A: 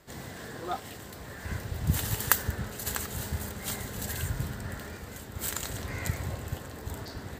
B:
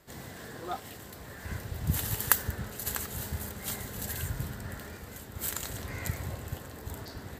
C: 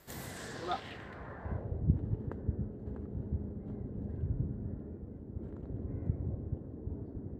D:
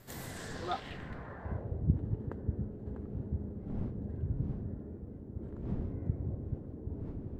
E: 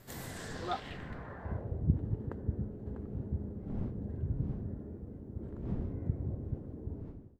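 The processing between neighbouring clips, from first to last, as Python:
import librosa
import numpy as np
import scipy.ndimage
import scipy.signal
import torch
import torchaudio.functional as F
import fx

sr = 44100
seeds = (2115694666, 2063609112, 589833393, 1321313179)

y1 = fx.peak_eq(x, sr, hz=12000.0, db=6.5, octaves=0.33)
y1 = y1 * librosa.db_to_amplitude(-2.5)
y2 = fx.filter_sweep_lowpass(y1, sr, from_hz=14000.0, to_hz=330.0, start_s=0.16, end_s=1.92, q=1.4)
y3 = fx.dmg_wind(y2, sr, seeds[0], corner_hz=160.0, level_db=-47.0)
y4 = fx.fade_out_tail(y3, sr, length_s=0.53)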